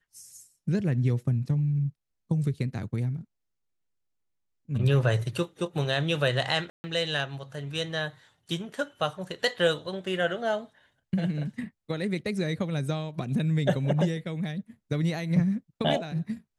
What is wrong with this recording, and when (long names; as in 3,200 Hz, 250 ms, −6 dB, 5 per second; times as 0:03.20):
0:06.70–0:06.84: drop-out 140 ms